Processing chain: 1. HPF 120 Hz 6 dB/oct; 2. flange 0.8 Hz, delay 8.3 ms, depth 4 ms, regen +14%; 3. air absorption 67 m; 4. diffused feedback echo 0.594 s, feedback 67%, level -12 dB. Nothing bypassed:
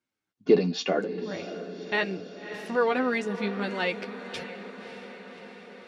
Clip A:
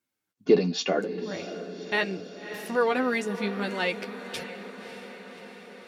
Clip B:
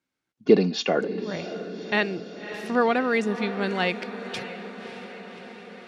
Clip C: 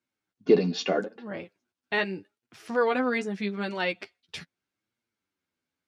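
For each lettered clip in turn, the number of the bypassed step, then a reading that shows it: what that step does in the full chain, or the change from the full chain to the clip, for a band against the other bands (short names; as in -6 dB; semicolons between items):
3, 4 kHz band +1.5 dB; 2, loudness change +3.0 LU; 4, echo-to-direct -9.5 dB to none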